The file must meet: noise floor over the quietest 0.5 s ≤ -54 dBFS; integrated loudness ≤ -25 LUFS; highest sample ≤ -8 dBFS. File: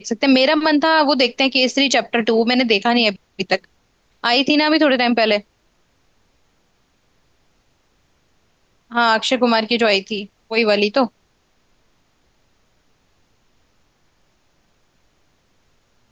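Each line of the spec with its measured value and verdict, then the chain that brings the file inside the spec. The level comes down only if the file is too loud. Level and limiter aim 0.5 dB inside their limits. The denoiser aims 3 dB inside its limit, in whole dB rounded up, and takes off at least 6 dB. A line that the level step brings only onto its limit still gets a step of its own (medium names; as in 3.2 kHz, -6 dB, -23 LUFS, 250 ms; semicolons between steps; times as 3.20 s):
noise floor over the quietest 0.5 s -62 dBFS: pass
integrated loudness -16.5 LUFS: fail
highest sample -4.5 dBFS: fail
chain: trim -9 dB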